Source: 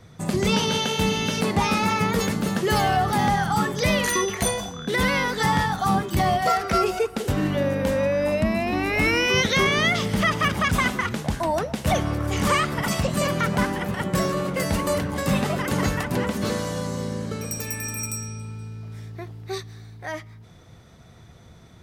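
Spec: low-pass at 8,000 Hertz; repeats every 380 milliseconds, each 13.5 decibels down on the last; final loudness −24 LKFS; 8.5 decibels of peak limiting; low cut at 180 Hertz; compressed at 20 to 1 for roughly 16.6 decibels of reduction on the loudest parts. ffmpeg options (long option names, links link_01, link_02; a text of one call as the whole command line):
ffmpeg -i in.wav -af "highpass=180,lowpass=8000,acompressor=threshold=-34dB:ratio=20,alimiter=level_in=7dB:limit=-24dB:level=0:latency=1,volume=-7dB,aecho=1:1:380|760:0.211|0.0444,volume=16dB" out.wav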